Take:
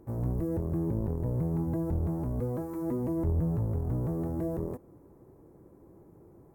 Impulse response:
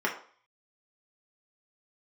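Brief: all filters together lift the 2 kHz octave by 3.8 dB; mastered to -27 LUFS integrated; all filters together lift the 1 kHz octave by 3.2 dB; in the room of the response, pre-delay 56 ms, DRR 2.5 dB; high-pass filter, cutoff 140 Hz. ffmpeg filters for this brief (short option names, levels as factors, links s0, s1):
-filter_complex "[0:a]highpass=140,equalizer=f=1000:t=o:g=3.5,equalizer=f=2000:t=o:g=3.5,asplit=2[s0][s1];[1:a]atrim=start_sample=2205,adelay=56[s2];[s1][s2]afir=irnorm=-1:irlink=0,volume=0.224[s3];[s0][s3]amix=inputs=2:normalize=0,volume=1.78"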